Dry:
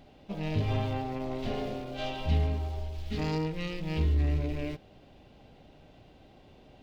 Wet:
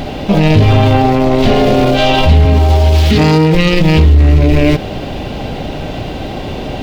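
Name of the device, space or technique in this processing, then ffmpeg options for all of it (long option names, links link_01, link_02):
loud club master: -filter_complex "[0:a]asettb=1/sr,asplit=3[link_01][link_02][link_03];[link_01]atrim=end=2.454[link_04];[link_02]atrim=start=2.45:end=3.55,asetpts=PTS-STARTPTS,afade=type=in:duration=0.004:curve=qsin,afade=type=out:start_time=1.096:duration=0.004:curve=qsin,highpass=frequency=74:width=0.5412,highpass=frequency=74:width=1.3066[link_05];[link_03]atrim=start=3.546[link_06];[link_04][link_05]acrossfade=duration=0.004:curve1=hsin:curve2=qsin[link_07];[link_07][link_06]acrossfade=duration=0.004:curve1=qsin:curve2=hsin,acompressor=threshold=-30dB:ratio=2,asoftclip=type=hard:threshold=-26dB,alimiter=level_in=35dB:limit=-1dB:release=50:level=0:latency=1,volume=-1dB"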